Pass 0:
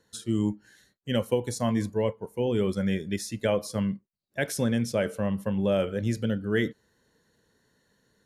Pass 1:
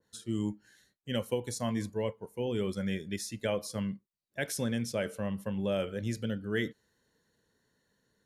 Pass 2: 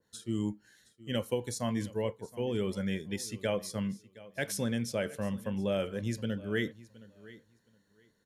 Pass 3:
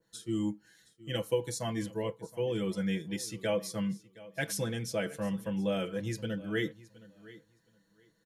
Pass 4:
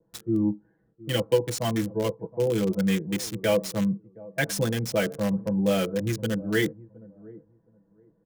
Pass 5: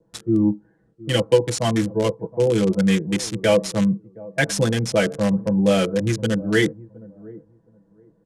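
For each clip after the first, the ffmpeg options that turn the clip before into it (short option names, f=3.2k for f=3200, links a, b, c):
-af "adynamicequalizer=threshold=0.01:dfrequency=1700:dqfactor=0.7:tfrequency=1700:tqfactor=0.7:attack=5:release=100:ratio=0.375:range=2:mode=boostabove:tftype=highshelf,volume=-6.5dB"
-af "aecho=1:1:718|1436:0.106|0.0191"
-af "aecho=1:1:6.1:0.89,volume=-2dB"
-filter_complex "[0:a]highshelf=f=10k:g=-11.5,acrossover=split=290|970[a][b][c];[c]acrusher=bits=6:mix=0:aa=0.000001[d];[a][b][d]amix=inputs=3:normalize=0,volume=8dB"
-af "lowpass=f=10k:w=0.5412,lowpass=f=10k:w=1.3066,volume=6dB"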